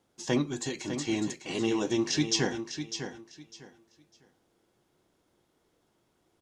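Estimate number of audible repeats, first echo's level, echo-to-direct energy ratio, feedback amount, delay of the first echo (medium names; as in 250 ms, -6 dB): 2, -9.0 dB, -9.0 dB, 22%, 602 ms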